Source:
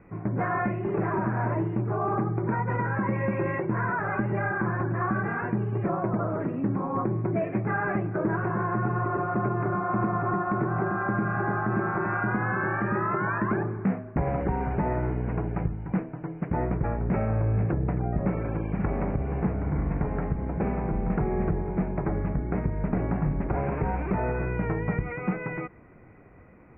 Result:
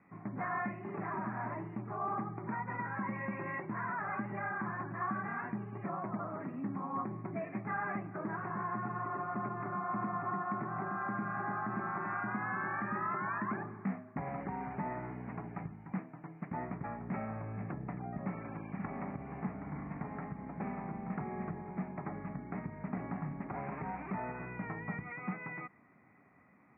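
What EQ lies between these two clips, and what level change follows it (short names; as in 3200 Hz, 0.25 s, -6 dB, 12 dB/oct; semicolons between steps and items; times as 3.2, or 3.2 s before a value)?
air absorption 150 m; speaker cabinet 320–2100 Hz, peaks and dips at 340 Hz -9 dB, 480 Hz -4 dB, 680 Hz -3 dB, 960 Hz -5 dB, 1500 Hz -10 dB; bell 490 Hz -13.5 dB 0.93 oct; +1.0 dB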